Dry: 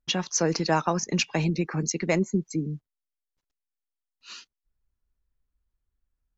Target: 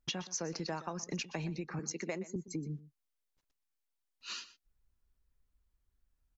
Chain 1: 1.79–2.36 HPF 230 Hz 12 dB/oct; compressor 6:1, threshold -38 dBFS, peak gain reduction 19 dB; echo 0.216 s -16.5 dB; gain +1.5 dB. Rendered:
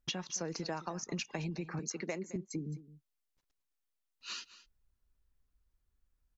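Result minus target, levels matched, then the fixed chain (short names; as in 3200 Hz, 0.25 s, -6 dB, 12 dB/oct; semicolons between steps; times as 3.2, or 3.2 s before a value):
echo 94 ms late
1.79–2.36 HPF 230 Hz 12 dB/oct; compressor 6:1, threshold -38 dBFS, peak gain reduction 19 dB; echo 0.122 s -16.5 dB; gain +1.5 dB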